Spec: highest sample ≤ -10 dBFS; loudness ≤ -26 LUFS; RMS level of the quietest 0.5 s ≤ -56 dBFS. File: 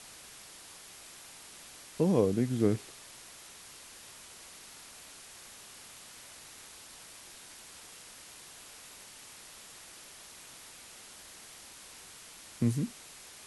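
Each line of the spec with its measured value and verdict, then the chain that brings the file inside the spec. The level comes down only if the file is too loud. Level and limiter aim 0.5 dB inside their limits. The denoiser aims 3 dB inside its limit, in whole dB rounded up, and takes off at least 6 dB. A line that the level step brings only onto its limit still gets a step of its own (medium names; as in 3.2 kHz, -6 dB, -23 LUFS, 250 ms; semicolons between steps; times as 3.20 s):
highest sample -12.5 dBFS: pass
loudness -38.5 LUFS: pass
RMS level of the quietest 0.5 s -51 dBFS: fail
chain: noise reduction 8 dB, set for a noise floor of -51 dBFS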